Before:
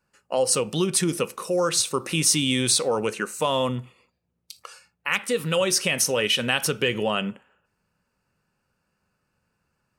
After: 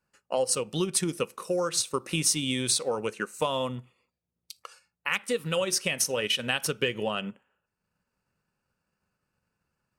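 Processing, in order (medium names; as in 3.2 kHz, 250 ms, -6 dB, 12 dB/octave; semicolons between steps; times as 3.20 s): transient shaper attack +4 dB, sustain -5 dB; trim -6 dB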